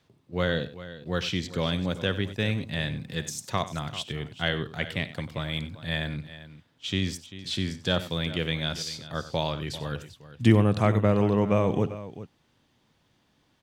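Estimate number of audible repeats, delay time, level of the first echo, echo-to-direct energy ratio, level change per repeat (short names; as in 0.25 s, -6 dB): 3, 54 ms, -20.0 dB, -11.5 dB, no steady repeat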